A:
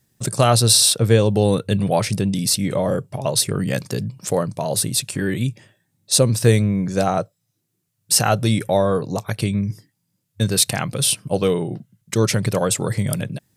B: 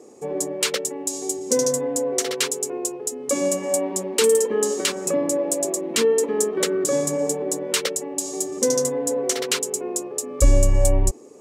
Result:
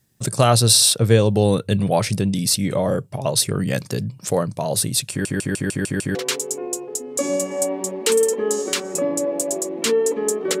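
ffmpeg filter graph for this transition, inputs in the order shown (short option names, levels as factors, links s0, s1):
-filter_complex "[0:a]apad=whole_dur=10.6,atrim=end=10.6,asplit=7[s0][s1][s2][s3][s4][s5][s6];[s0]atrim=end=5.252[s7];[s1]atrim=start=5.098:end=5.252[s8];[s2]atrim=start=5.098:end=5.252[s9];[s3]atrim=start=5.098:end=5.252[s10];[s4]atrim=start=5.098:end=5.252[s11];[s5]atrim=start=5.098:end=5.252[s12];[s6]atrim=start=5.098:end=5.252[s13];[1:a]atrim=start=2.268:end=6.72[s14];[s7][s8]acrossfade=d=0.004:c1=hsin:c2=hsin[s15];[s15][s9]acrossfade=d=0.004:c1=hsin:c2=hsin[s16];[s16][s10]acrossfade=d=0.004:c1=hsin:c2=hsin[s17];[s17][s11]acrossfade=d=0.004:c1=hsin:c2=hsin[s18];[s18][s12]acrossfade=d=0.004:c1=hsin:c2=hsin[s19];[s19][s13]acrossfade=d=0.004:c1=hsin:c2=hsin[s20];[s20][s14]acrossfade=d=0.004:c1=hsin:c2=hsin"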